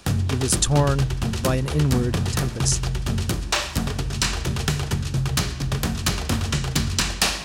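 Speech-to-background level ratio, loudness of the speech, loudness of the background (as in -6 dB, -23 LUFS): 0.5 dB, -24.0 LUFS, -24.5 LUFS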